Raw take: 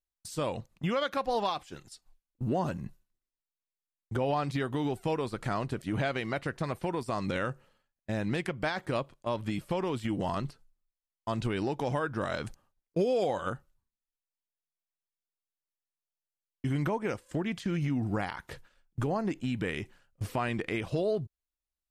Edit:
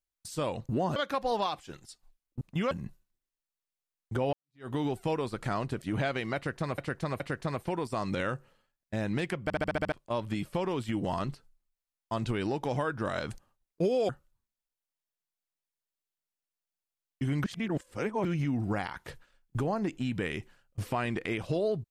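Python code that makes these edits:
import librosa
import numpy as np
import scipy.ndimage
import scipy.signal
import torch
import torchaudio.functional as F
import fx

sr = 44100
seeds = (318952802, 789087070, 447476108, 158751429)

y = fx.edit(x, sr, fx.swap(start_s=0.69, length_s=0.3, other_s=2.44, other_length_s=0.27),
    fx.fade_in_span(start_s=4.33, length_s=0.35, curve='exp'),
    fx.repeat(start_s=6.36, length_s=0.42, count=3),
    fx.stutter_over(start_s=8.59, slice_s=0.07, count=7),
    fx.cut(start_s=13.25, length_s=0.27),
    fx.reverse_span(start_s=16.87, length_s=0.81), tone=tone)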